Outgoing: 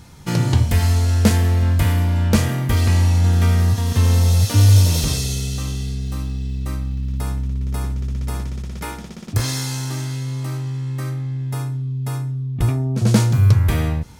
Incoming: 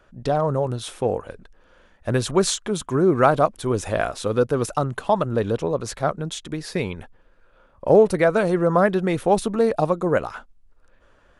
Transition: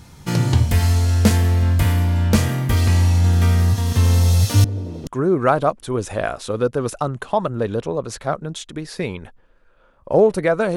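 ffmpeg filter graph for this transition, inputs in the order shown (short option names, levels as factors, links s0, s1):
-filter_complex "[0:a]asettb=1/sr,asplit=3[s0][s1][s2];[s0]atrim=end=4.644[s3];[s1]atrim=start=4.64:end=5.07,asetpts=PTS-STARTPTS,afade=t=in:d=0.004:c=qsin,afade=t=out:st=0.426:d=0.004:c=qsin,bandpass=f=330:t=q:w=1.8:csg=0[s4];[s2]atrim=start=5.066[s5];[s3][s4]acrossfade=d=0.004:c1=hsin:c2=qsin[s6];[s6][s5]acrossfade=d=0.004:c1=qsin:c2=hsin,apad=whole_dur=10.76,atrim=end=10.76,atrim=end=5.072[s7];[1:a]atrim=start=2.828:end=8.52[s8];[s7][s8]acrossfade=d=0.004:c1=hsin:c2=hsin"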